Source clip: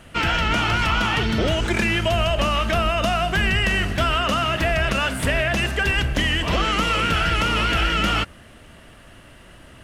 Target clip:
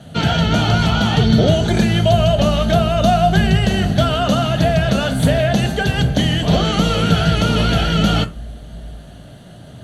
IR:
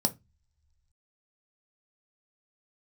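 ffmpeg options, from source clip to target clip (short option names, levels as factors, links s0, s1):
-filter_complex "[1:a]atrim=start_sample=2205,asetrate=34398,aresample=44100[s0];[0:a][s0]afir=irnorm=-1:irlink=0,volume=0.531"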